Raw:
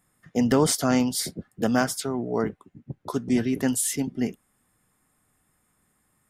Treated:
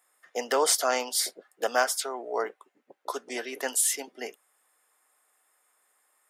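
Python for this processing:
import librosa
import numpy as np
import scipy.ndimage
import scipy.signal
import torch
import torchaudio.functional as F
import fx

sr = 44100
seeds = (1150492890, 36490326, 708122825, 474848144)

y = scipy.signal.sosfilt(scipy.signal.butter(4, 490.0, 'highpass', fs=sr, output='sos'), x)
y = y * 10.0 ** (1.5 / 20.0)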